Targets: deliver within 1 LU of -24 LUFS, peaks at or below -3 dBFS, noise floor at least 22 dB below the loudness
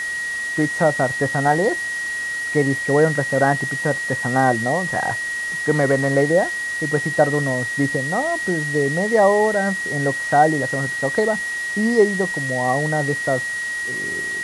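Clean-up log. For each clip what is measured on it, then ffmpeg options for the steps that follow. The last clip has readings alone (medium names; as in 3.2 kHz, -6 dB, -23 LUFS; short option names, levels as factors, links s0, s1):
steady tone 1.9 kHz; tone level -23 dBFS; noise floor -26 dBFS; noise floor target -42 dBFS; loudness -19.5 LUFS; peak level -3.0 dBFS; loudness target -24.0 LUFS
-> -af "bandreject=f=1900:w=30"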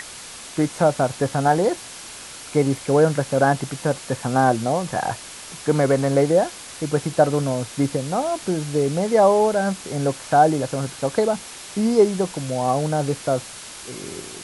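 steady tone not found; noise floor -38 dBFS; noise floor target -43 dBFS
-> -af "afftdn=nr=6:nf=-38"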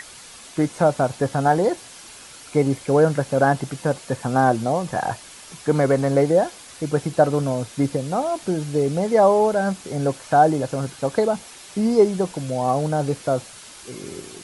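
noise floor -43 dBFS; loudness -21.0 LUFS; peak level -3.5 dBFS; loudness target -24.0 LUFS
-> -af "volume=0.708"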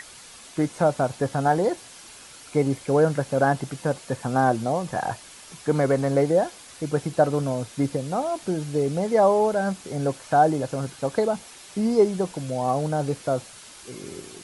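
loudness -24.0 LUFS; peak level -6.5 dBFS; noise floor -46 dBFS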